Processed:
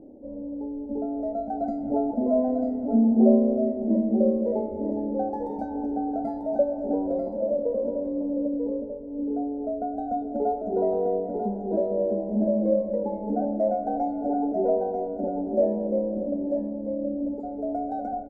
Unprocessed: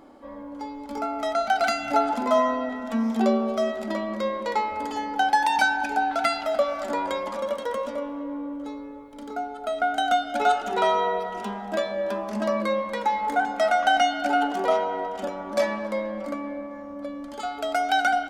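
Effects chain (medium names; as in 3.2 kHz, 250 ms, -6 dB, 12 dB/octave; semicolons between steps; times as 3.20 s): inverse Chebyshev low-pass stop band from 1.1 kHz, stop band 40 dB; on a send: delay 942 ms -5.5 dB; on the sum: trim +5 dB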